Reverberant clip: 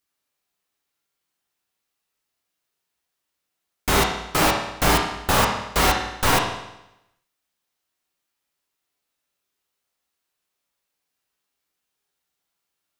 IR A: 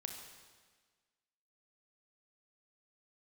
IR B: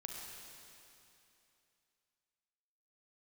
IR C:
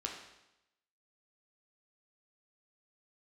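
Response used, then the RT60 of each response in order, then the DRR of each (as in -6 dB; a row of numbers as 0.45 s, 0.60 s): C; 1.5 s, 2.9 s, 0.90 s; 3.5 dB, -0.5 dB, -0.5 dB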